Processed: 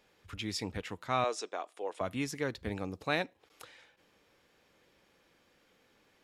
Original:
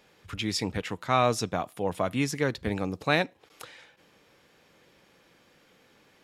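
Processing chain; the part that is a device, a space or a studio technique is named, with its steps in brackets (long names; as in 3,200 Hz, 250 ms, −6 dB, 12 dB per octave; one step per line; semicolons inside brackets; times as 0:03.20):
0:01.24–0:02.01: Chebyshev band-pass filter 370–8,600 Hz, order 3
low shelf boost with a cut just above (low-shelf EQ 65 Hz +5.5 dB; parametric band 150 Hz −4.5 dB 0.7 octaves)
level −7 dB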